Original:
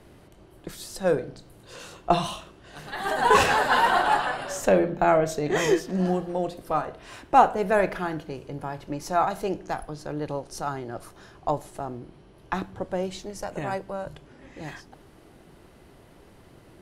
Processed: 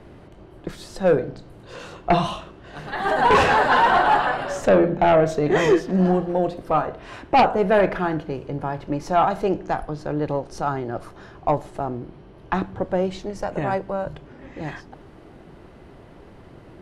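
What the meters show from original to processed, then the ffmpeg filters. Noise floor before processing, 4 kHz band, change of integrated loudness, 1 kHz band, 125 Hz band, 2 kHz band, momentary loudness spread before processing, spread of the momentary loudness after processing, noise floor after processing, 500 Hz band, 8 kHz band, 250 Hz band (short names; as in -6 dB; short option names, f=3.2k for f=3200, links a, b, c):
-53 dBFS, +1.0 dB, +4.0 dB, +3.5 dB, +6.5 dB, +3.0 dB, 20 LU, 18 LU, -46 dBFS, +5.0 dB, n/a, +6.0 dB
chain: -af "aeval=exprs='0.668*(cos(1*acos(clip(val(0)/0.668,-1,1)))-cos(1*PI/2))+0.266*(cos(3*acos(clip(val(0)/0.668,-1,1)))-cos(3*PI/2))+0.299*(cos(5*acos(clip(val(0)/0.668,-1,1)))-cos(5*PI/2))':c=same,aemphasis=mode=reproduction:type=75fm"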